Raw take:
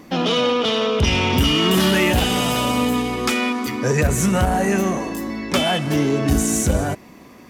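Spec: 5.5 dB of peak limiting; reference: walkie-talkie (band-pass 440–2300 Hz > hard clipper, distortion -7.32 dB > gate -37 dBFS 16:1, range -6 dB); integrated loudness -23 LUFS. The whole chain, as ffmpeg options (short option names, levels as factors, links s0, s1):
-af "alimiter=limit=0.237:level=0:latency=1,highpass=440,lowpass=2300,asoftclip=type=hard:threshold=0.0355,agate=range=0.501:threshold=0.0141:ratio=16,volume=2.51"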